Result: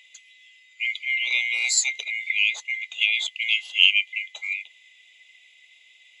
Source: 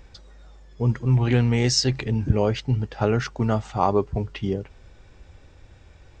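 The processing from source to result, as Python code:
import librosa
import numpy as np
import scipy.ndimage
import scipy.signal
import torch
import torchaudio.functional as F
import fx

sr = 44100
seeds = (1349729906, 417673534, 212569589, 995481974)

y = fx.band_swap(x, sr, width_hz=2000)
y = scipy.signal.sosfilt(scipy.signal.butter(4, 500.0, 'highpass', fs=sr, output='sos'), y)
y = fx.high_shelf_res(y, sr, hz=2200.0, db=10.5, q=3.0)
y = y * librosa.db_to_amplitude(-11.0)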